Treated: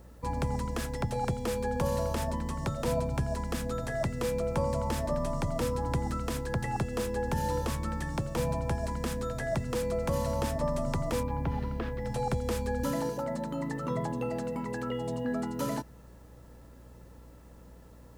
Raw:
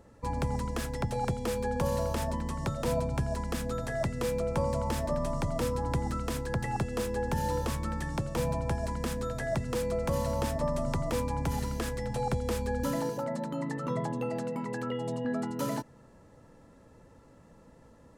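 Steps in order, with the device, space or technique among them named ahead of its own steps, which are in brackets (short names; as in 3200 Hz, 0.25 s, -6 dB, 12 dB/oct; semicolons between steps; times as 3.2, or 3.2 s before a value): 11.23–12.05 air absorption 330 m; video cassette with head-switching buzz (buzz 60 Hz, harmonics 31, -53 dBFS -8 dB/oct; white noise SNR 38 dB)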